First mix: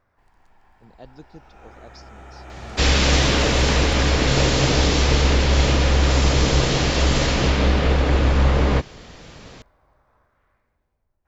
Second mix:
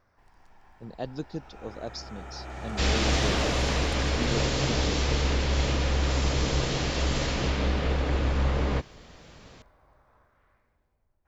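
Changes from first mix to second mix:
speech +9.0 dB; second sound -8.5 dB

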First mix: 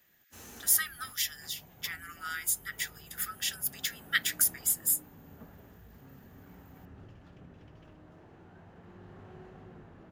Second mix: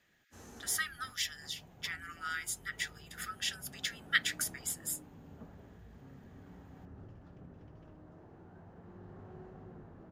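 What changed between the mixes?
background: add bell 2800 Hz -9 dB 1.6 oct; master: add air absorption 62 m

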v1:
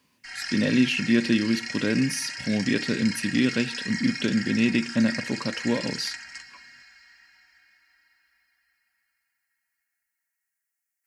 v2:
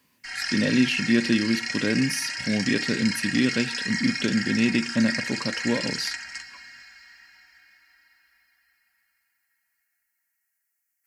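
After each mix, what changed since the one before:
background +4.0 dB; master: add bell 13000 Hz +6.5 dB 0.2 oct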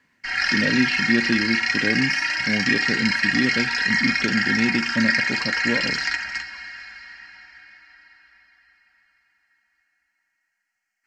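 background +11.0 dB; master: add air absorption 160 m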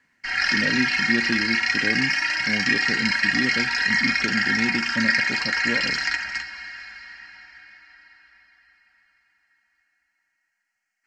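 speech -4.0 dB; master: add bell 13000 Hz -6.5 dB 0.2 oct

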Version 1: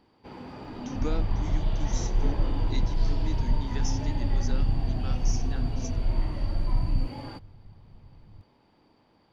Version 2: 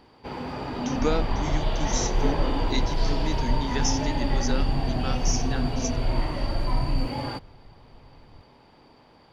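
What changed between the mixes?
speech +10.0 dB; first sound +10.0 dB; master: add thirty-one-band EQ 100 Hz -5 dB, 200 Hz -6 dB, 315 Hz -5 dB

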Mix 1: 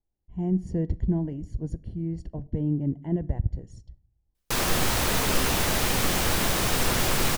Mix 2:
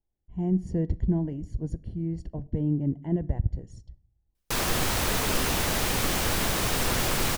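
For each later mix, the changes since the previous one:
background: send -10.5 dB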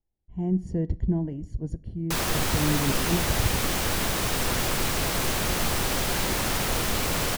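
background: entry -2.40 s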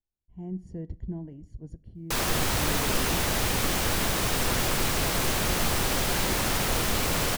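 speech -10.0 dB

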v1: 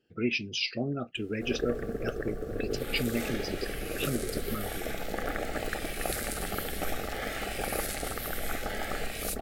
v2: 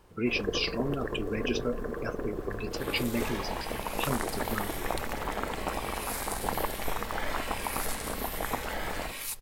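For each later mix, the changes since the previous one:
first sound: entry -1.15 s; master: remove Butterworth band-stop 990 Hz, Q 2.4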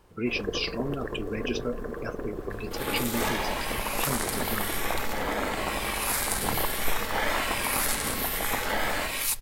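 second sound +8.5 dB

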